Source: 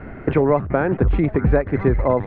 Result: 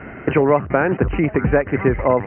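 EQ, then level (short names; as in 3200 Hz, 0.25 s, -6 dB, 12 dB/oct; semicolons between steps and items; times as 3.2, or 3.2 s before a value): HPF 120 Hz 6 dB/oct; brick-wall FIR low-pass 3100 Hz; high shelf 2200 Hz +11.5 dB; +1.5 dB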